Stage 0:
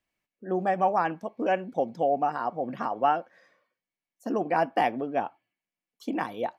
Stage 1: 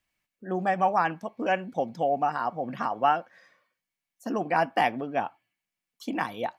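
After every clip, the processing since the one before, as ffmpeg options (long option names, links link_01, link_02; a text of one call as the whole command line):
ffmpeg -i in.wav -af "equalizer=frequency=410:width=0.68:gain=-7.5,volume=4.5dB" out.wav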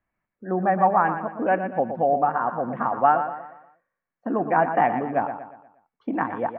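ffmpeg -i in.wav -af "lowpass=frequency=1700:width=0.5412,lowpass=frequency=1700:width=1.3066,aecho=1:1:119|238|357|476|595:0.355|0.149|0.0626|0.0263|0.011,volume=4.5dB" out.wav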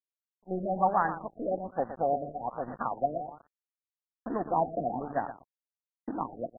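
ffmpeg -i in.wav -af "acrusher=bits=5:mode=log:mix=0:aa=0.000001,aeval=exprs='sgn(val(0))*max(abs(val(0))-0.0224,0)':channel_layout=same,afftfilt=real='re*lt(b*sr/1024,690*pow(2000/690,0.5+0.5*sin(2*PI*1.2*pts/sr)))':imag='im*lt(b*sr/1024,690*pow(2000/690,0.5+0.5*sin(2*PI*1.2*pts/sr)))':win_size=1024:overlap=0.75,volume=-5.5dB" out.wav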